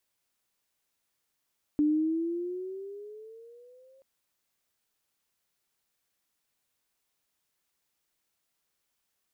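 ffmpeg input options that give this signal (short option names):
-f lavfi -i "aevalsrc='pow(10,(-20.5-35.5*t/2.23)/20)*sin(2*PI*295*2.23/(10.5*log(2)/12)*(exp(10.5*log(2)/12*t/2.23)-1))':d=2.23:s=44100"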